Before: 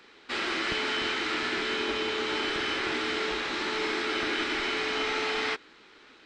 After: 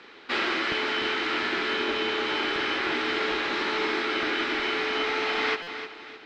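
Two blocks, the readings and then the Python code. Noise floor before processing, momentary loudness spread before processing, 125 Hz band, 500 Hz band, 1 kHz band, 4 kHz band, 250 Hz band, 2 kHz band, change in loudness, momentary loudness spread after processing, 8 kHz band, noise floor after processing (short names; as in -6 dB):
-55 dBFS, 2 LU, -0.5 dB, +2.5 dB, +3.5 dB, +1.5 dB, +2.5 dB, +3.0 dB, +2.5 dB, 2 LU, -4.0 dB, -48 dBFS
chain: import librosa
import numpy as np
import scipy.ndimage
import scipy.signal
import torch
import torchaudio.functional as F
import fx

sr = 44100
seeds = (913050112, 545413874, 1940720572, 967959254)

y = fx.air_absorb(x, sr, metres=120.0)
y = fx.echo_feedback(y, sr, ms=307, feedback_pct=37, wet_db=-12.0)
y = fx.rider(y, sr, range_db=4, speed_s=0.5)
y = fx.low_shelf(y, sr, hz=130.0, db=-9.0)
y = fx.buffer_glitch(y, sr, at_s=(5.62,), block=256, repeats=8)
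y = y * 10.0 ** (4.0 / 20.0)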